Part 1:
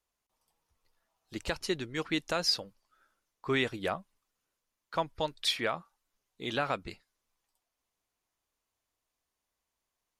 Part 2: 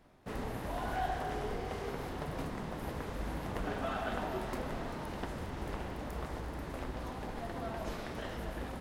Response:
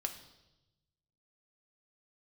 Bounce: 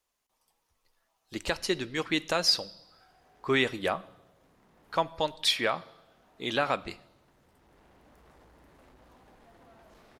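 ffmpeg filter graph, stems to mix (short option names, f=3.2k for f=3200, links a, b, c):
-filter_complex "[0:a]bandreject=f=1.4k:w=29,volume=1.5dB,asplit=3[a][b][c];[b]volume=-7.5dB[d];[1:a]asoftclip=type=tanh:threshold=-38dB,adelay=2050,volume=-12.5dB[e];[c]apad=whole_len=483203[f];[e][f]sidechaincompress=threshold=-38dB:ratio=8:attack=28:release=1420[g];[2:a]atrim=start_sample=2205[h];[d][h]afir=irnorm=-1:irlink=0[i];[a][g][i]amix=inputs=3:normalize=0,lowshelf=f=210:g=-5"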